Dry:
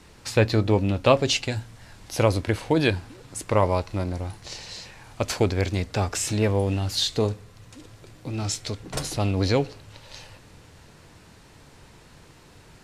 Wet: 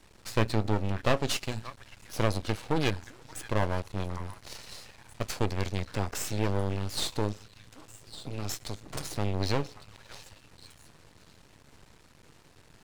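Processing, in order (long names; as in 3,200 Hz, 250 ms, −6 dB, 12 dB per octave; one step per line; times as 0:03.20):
echo through a band-pass that steps 577 ms, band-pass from 1,400 Hz, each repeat 1.4 octaves, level −10 dB
half-wave rectification
level −3 dB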